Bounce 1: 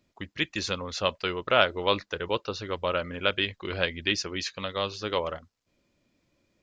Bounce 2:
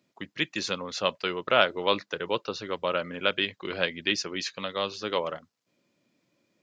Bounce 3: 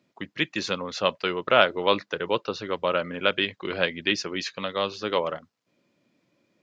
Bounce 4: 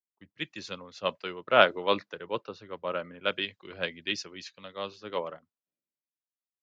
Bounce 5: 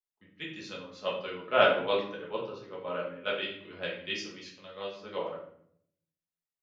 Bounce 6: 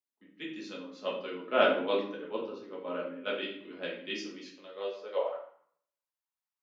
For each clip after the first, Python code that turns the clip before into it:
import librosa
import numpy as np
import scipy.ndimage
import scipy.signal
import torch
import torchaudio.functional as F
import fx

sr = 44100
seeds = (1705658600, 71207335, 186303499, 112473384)

y1 = scipy.signal.sosfilt(scipy.signal.butter(4, 130.0, 'highpass', fs=sr, output='sos'), x)
y2 = fx.high_shelf(y1, sr, hz=5900.0, db=-9.5)
y2 = y2 * 10.0 ** (3.5 / 20.0)
y3 = fx.band_widen(y2, sr, depth_pct=100)
y3 = y3 * 10.0 ** (-8.5 / 20.0)
y4 = fx.room_shoebox(y3, sr, seeds[0], volume_m3=120.0, walls='mixed', distance_m=1.4)
y4 = y4 * 10.0 ** (-8.5 / 20.0)
y5 = fx.filter_sweep_highpass(y4, sr, from_hz=260.0, to_hz=940.0, start_s=4.48, end_s=5.69, q=3.1)
y5 = y5 * 10.0 ** (-3.5 / 20.0)